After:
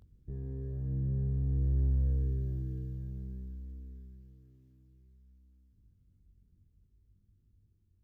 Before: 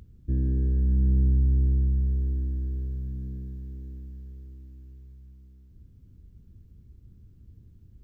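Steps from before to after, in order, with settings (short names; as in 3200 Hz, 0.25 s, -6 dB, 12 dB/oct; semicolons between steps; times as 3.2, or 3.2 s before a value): one diode to ground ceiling -31 dBFS; Doppler pass-by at 2.31, 6 m/s, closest 3.8 m; chorus voices 2, 0.54 Hz, delay 21 ms, depth 1.6 ms; gain +4.5 dB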